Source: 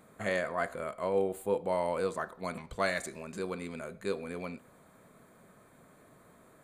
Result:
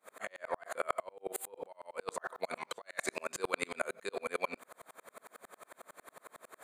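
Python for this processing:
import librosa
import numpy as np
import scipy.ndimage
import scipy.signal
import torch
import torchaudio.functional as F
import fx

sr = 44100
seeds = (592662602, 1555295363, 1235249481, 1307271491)

y = scipy.signal.sosfilt(scipy.signal.butter(2, 590.0, 'highpass', fs=sr, output='sos'), x)
y = fx.over_compress(y, sr, threshold_db=-41.0, ratio=-0.5)
y = fx.tremolo_decay(y, sr, direction='swelling', hz=11.0, depth_db=38)
y = y * librosa.db_to_amplitude(12.0)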